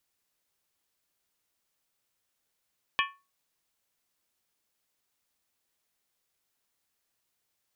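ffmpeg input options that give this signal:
-f lavfi -i "aevalsrc='0.0631*pow(10,-3*t/0.29)*sin(2*PI*1110*t)+0.0562*pow(10,-3*t/0.23)*sin(2*PI*1769.3*t)+0.0501*pow(10,-3*t/0.198)*sin(2*PI*2371*t)+0.0447*pow(10,-3*t/0.191)*sin(2*PI*2548.6*t)+0.0398*pow(10,-3*t/0.178)*sin(2*PI*2944.8*t)+0.0355*pow(10,-3*t/0.17)*sin(2*PI*3239*t)':d=0.63:s=44100"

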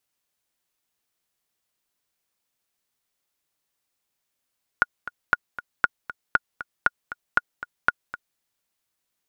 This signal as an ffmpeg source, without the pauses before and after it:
-f lavfi -i "aevalsrc='pow(10,(-4-15*gte(mod(t,2*60/235),60/235))/20)*sin(2*PI*1440*mod(t,60/235))*exp(-6.91*mod(t,60/235)/0.03)':d=3.57:s=44100"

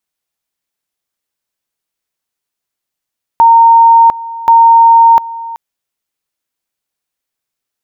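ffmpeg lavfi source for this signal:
-f lavfi -i "aevalsrc='pow(10,(-1.5-18.5*gte(mod(t,1.08),0.7))/20)*sin(2*PI*920*t)':d=2.16:s=44100"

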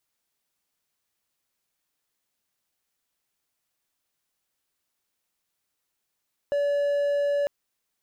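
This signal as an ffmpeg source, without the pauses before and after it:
-f lavfi -i "aevalsrc='0.106*(1-4*abs(mod(573*t+0.25,1)-0.5))':d=0.95:s=44100"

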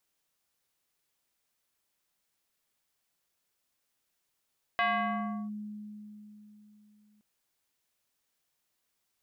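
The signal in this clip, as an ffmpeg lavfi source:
-f lavfi -i "aevalsrc='0.0668*pow(10,-3*t/3.64)*sin(2*PI*210*t+2.4*clip(1-t/0.71,0,1)*sin(2*PI*4.36*210*t))':d=2.42:s=44100"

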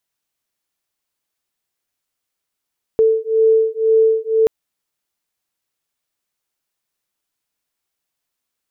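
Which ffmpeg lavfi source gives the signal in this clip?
-f lavfi -i "aevalsrc='0.188*(sin(2*PI*443*t)+sin(2*PI*445*t))':d=1.48:s=44100"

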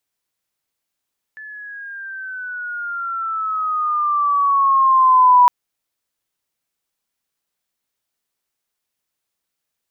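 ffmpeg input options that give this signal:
-f lavfi -i "aevalsrc='pow(10,(-6.5+26*(t/4.11-1))/20)*sin(2*PI*1740*4.11/(-10*log(2)/12)*(exp(-10*log(2)/12*t/4.11)-1))':d=4.11:s=44100"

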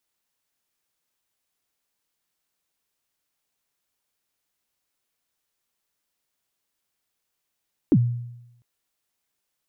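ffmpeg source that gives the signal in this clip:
-f lavfi -i "aevalsrc='0.282*pow(10,-3*t/0.89)*sin(2*PI*(360*0.054/log(120/360)*(exp(log(120/360)*min(t,0.054)/0.054)-1)+120*max(t-0.054,0)))':d=0.7:s=44100"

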